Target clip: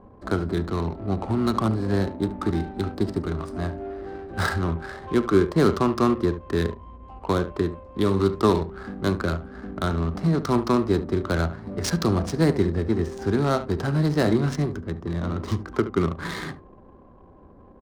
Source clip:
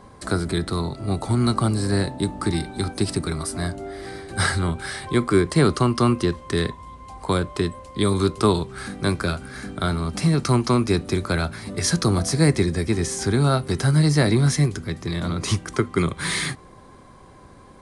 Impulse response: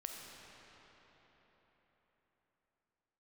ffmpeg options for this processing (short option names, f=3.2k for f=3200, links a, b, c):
-af "equalizer=f=2.5k:w=2.4:g=-14,aecho=1:1:36|72:0.158|0.251,adynamicsmooth=sensitivity=3:basefreq=760,equalizer=f=130:w=3.4:g=-11"